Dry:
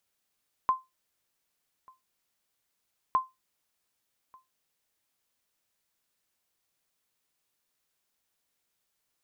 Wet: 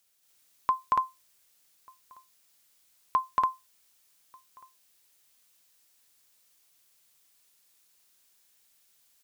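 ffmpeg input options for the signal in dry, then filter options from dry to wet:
-f lavfi -i "aevalsrc='0.15*(sin(2*PI*1040*mod(t,2.46))*exp(-6.91*mod(t,2.46)/0.2)+0.0376*sin(2*PI*1040*max(mod(t,2.46)-1.19,0))*exp(-6.91*max(mod(t,2.46)-1.19,0)/0.2))':d=4.92:s=44100"
-filter_complex "[0:a]highshelf=f=2500:g=10,asplit=2[s0][s1];[s1]aecho=0:1:230.3|285.7:1|1[s2];[s0][s2]amix=inputs=2:normalize=0"

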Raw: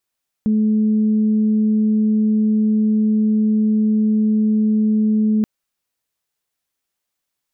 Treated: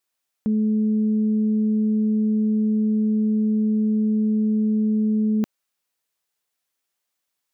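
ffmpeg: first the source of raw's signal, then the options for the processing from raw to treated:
-f lavfi -i "aevalsrc='0.224*sin(2*PI*215*t)+0.0237*sin(2*PI*430*t)':d=4.98:s=44100"
-af "lowshelf=f=200:g=-9"

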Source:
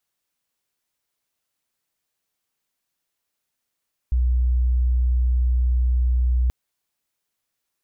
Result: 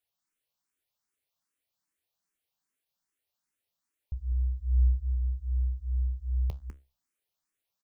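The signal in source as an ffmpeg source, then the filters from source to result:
-f lavfi -i "sine=f=61.7:d=2.38:r=44100,volume=2.06dB"
-filter_complex "[0:a]flanger=delay=9.4:depth=7.5:regen=72:speed=0.51:shape=triangular,asplit=2[s0][s1];[s1]aecho=0:1:200:0.422[s2];[s0][s2]amix=inputs=2:normalize=0,asplit=2[s3][s4];[s4]afreqshift=2.5[s5];[s3][s5]amix=inputs=2:normalize=1"

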